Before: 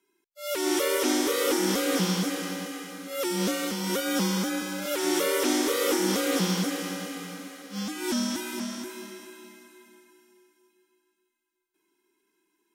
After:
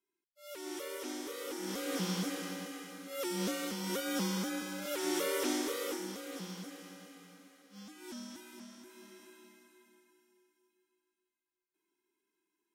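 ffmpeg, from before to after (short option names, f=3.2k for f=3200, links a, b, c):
-af "volume=-1dB,afade=t=in:st=1.54:d=0.66:silence=0.375837,afade=t=out:st=5.46:d=0.69:silence=0.316228,afade=t=in:st=8.82:d=0.45:silence=0.446684"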